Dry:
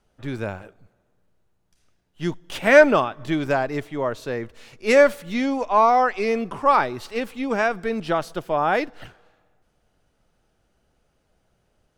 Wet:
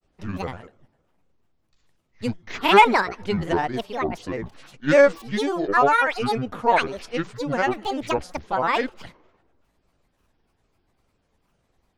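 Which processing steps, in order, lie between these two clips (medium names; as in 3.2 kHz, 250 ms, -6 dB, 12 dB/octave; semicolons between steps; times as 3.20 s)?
resampled via 22.05 kHz; granulator 100 ms, grains 20 per s, spray 20 ms, pitch spread up and down by 12 st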